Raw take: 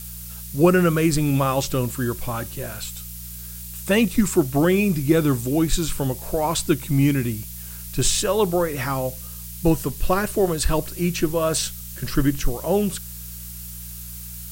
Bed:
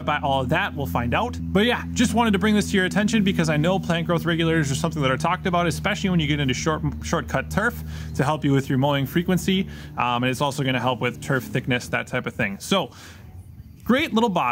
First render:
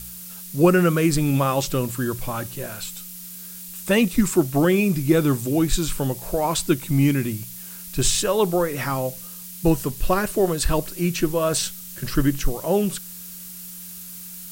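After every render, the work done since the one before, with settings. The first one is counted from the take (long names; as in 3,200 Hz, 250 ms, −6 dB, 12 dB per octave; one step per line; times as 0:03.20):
hum removal 60 Hz, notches 2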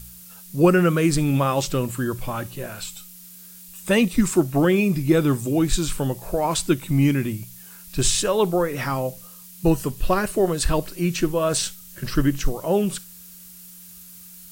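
noise reduction from a noise print 6 dB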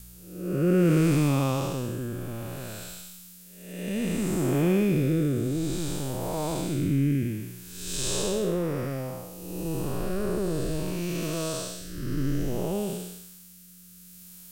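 spectrum smeared in time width 392 ms
rotating-speaker cabinet horn 0.6 Hz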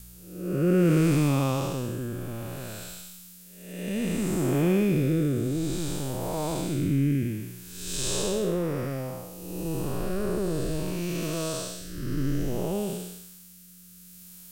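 no processing that can be heard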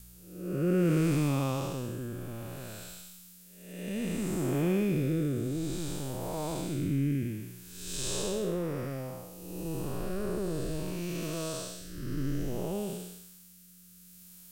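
level −5 dB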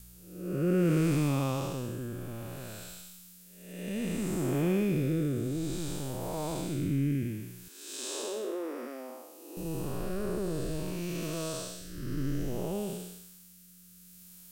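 0:07.68–0:09.57: Chebyshev high-pass with heavy ripple 230 Hz, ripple 3 dB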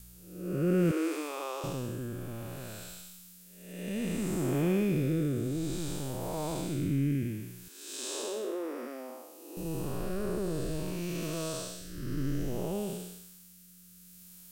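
0:00.91–0:01.64: Chebyshev high-pass with heavy ripple 310 Hz, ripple 3 dB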